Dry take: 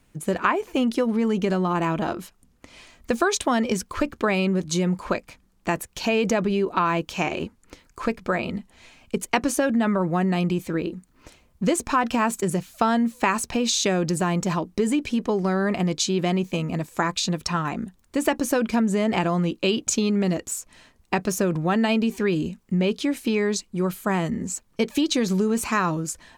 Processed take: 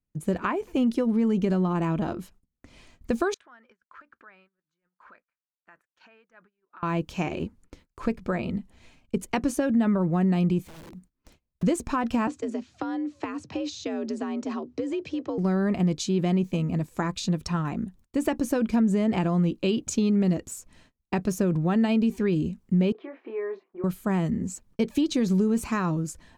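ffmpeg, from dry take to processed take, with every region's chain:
-filter_complex "[0:a]asettb=1/sr,asplit=3[a][b][c];[a]atrim=end=3.344[d];[b]atrim=start=3.34:end=6.83,asetpts=PTS-STARTPTS,afade=t=in:d=0.004:c=qsin,afade=t=out:st=3.486:d=0.004:c=qsin,acompressor=threshold=-29dB:ratio=8:attack=3.2:release=140:knee=1:detection=peak,bandpass=f=1.5k:t=q:w=3.7[e];[c]atrim=start=6.826[f];[d][e]acrossfade=d=0.004:c1=hsin:c2=qsin[g];[g][f]acrossfade=d=0.004:c1=qsin:c2=hsin,asettb=1/sr,asplit=3[h][i][j];[h]atrim=end=10.634[k];[i]atrim=start=10.63:end=11.63,asetpts=PTS-STARTPTS,afade=t=in:d=0.004:c=qsin,afade=t=out:st=0.996:d=0.004:c=qsin,acrusher=bits=8:mode=log:mix=0:aa=0.000001,acompressor=threshold=-42dB:ratio=2.5:attack=3.2:release=140:knee=1:detection=peak,aeval=exprs='(mod(66.8*val(0)+1,2)-1)/66.8':c=same[l];[j]atrim=start=11.626[m];[k][l]acrossfade=d=0.004:c1=hsin:c2=qsin[n];[n][m]acrossfade=d=0.004:c1=qsin:c2=hsin,asettb=1/sr,asplit=3[o][p][q];[o]atrim=end=12.274[r];[p]atrim=start=12.27:end=15.38,asetpts=PTS-STARTPTS,afade=t=in:d=0.004:c=qsin,afade=t=out:st=3.106:d=0.004:c=qsin,acrossover=split=120|360[s][t][u];[s]acompressor=threshold=-51dB:ratio=4[v];[t]acompressor=threshold=-30dB:ratio=4[w];[u]acompressor=threshold=-28dB:ratio=4[x];[v][w][x]amix=inputs=3:normalize=0,afreqshift=66,lowpass=f=6.2k:w=0.5412,lowpass=f=6.2k:w=1.3066[y];[q]atrim=start=15.376[z];[r][y]acrossfade=d=0.004:c1=hsin:c2=qsin[aa];[aa][z]acrossfade=d=0.004:c1=qsin:c2=hsin,asettb=1/sr,asplit=3[ab][ac][ad];[ab]atrim=end=22.924[ae];[ac]atrim=start=22.92:end=23.84,asetpts=PTS-STARTPTS,afade=t=in:d=0.004:c=qsin,afade=t=out:st=0.916:d=0.004:c=qsin,acompressor=threshold=-42dB:ratio=1.5:attack=3.2:release=140:knee=1:detection=peak,highpass=f=370:w=0.5412,highpass=f=370:w=1.3066,equalizer=f=380:t=q:w=4:g=8,equalizer=f=700:t=q:w=4:g=8,equalizer=f=1.1k:t=q:w=4:g=8,equalizer=f=1.8k:t=q:w=4:g=3,lowpass=f=2.2k:w=0.5412,lowpass=f=2.2k:w=1.3066,asplit=2[af][ag];[ag]adelay=26,volume=-5.5dB[ah];[af][ah]amix=inputs=2:normalize=0,atrim=end_sample=40572[ai];[ad]atrim=start=23.836[aj];[ae][ai]acrossfade=d=0.004:c1=hsin:c2=qsin[ak];[ak][aj]acrossfade=d=0.004:c1=qsin:c2=hsin,agate=range=-25dB:threshold=-51dB:ratio=16:detection=peak,lowshelf=f=380:g=11.5,volume=-8.5dB"

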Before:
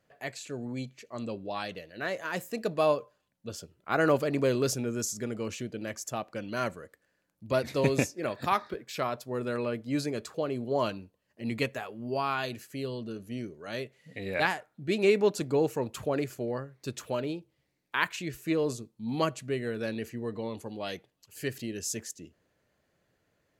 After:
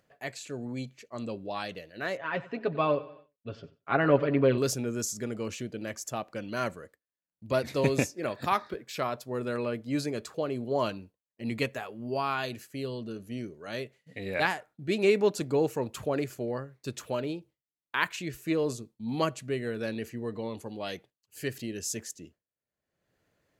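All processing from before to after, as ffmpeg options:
-filter_complex "[0:a]asettb=1/sr,asplit=3[a][b][c];[a]atrim=end=2.174[d];[b]atrim=start=2.17:end=4.58,asetpts=PTS-STARTPTS,afade=t=in:d=0.004:c=qsin,afade=t=out:st=2.406:d=0.004:c=qsin,lowpass=f=3.2k:w=0.5412,lowpass=f=3.2k:w=1.3066,aecho=1:1:7.3:0.64,atrim=end_sample=106281,aecho=1:1:93|186|279|372:0.126|0.0629|0.0315|0.0157,atrim=end_sample=106281[e];[c]atrim=start=4.576[f];[d][e]acrossfade=d=0.004:c1=hsin:c2=qsin[g];[g][f]acrossfade=d=0.004:c1=qsin:c2=hsin,agate=range=-33dB:threshold=-47dB:ratio=3:detection=peak,acompressor=mode=upward:threshold=-48dB:ratio=2.5"

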